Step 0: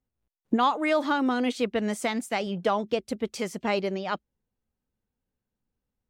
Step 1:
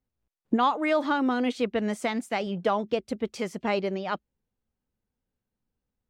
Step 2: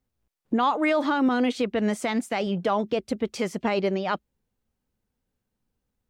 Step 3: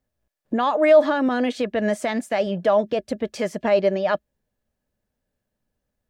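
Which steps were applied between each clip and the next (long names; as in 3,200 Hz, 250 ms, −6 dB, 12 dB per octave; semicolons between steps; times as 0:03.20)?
high-shelf EQ 5,500 Hz −8 dB
brickwall limiter −19 dBFS, peak gain reduction 6.5 dB; level +4.5 dB
hollow resonant body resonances 610/1,700 Hz, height 13 dB, ringing for 45 ms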